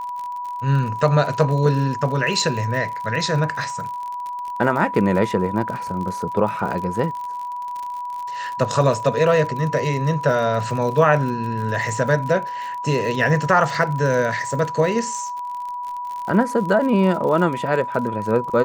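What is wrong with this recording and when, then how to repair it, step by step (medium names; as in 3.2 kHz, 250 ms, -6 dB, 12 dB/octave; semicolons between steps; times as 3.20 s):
crackle 52 per s -28 dBFS
whine 980 Hz -26 dBFS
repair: de-click; band-stop 980 Hz, Q 30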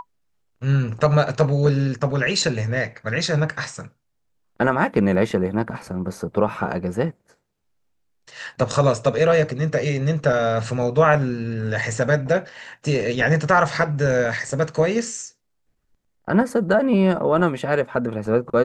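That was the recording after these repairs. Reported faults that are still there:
nothing left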